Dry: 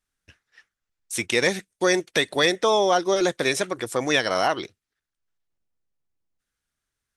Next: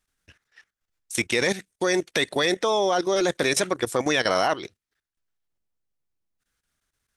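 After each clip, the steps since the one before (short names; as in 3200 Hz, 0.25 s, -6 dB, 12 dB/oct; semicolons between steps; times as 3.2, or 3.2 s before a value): level quantiser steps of 14 dB; gain +6.5 dB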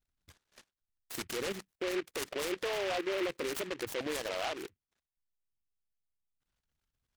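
formant sharpening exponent 2; limiter -21 dBFS, peak gain reduction 10.5 dB; noise-modulated delay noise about 1900 Hz, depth 0.15 ms; gain -6 dB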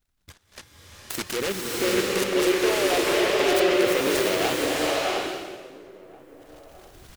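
recorder AGC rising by 11 dB/s; outdoor echo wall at 290 m, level -21 dB; bloom reverb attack 0.68 s, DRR -3.5 dB; gain +8.5 dB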